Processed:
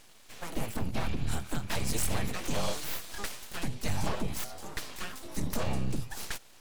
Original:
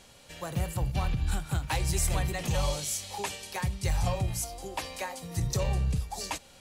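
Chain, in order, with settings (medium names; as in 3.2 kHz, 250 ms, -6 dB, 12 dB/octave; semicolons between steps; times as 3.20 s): full-wave rectifier; warped record 45 rpm, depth 100 cents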